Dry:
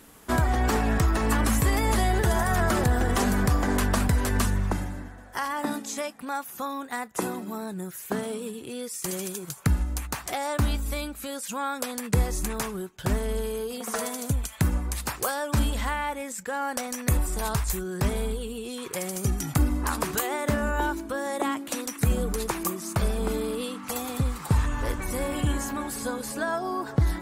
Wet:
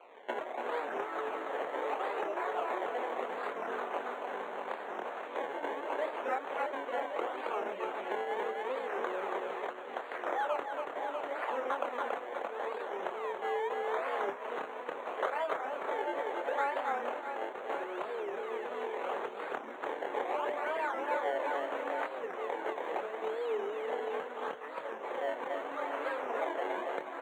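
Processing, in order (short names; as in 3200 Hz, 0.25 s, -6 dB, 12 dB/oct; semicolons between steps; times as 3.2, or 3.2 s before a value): random spectral dropouts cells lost 28%; doubler 25 ms -2 dB; decimation with a swept rate 24×, swing 100% 0.76 Hz; on a send: reverse bouncing-ball echo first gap 0.28 s, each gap 1.3×, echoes 5; on the sum: dynamic EQ 3100 Hz, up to -7 dB, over -45 dBFS, Q 0.95; Butterworth band-stop 5000 Hz, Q 1.5; compressor 6:1, threshold -29 dBFS, peak gain reduction 14 dB; HPF 460 Hz 24 dB/oct; air absorption 220 m; record warp 45 rpm, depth 160 cents; gain +3.5 dB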